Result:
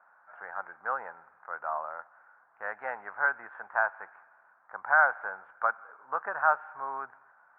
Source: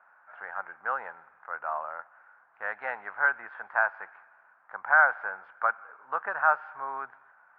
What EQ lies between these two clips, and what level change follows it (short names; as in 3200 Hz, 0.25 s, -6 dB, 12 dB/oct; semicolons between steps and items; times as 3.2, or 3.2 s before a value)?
LPF 1600 Hz 12 dB/oct; 0.0 dB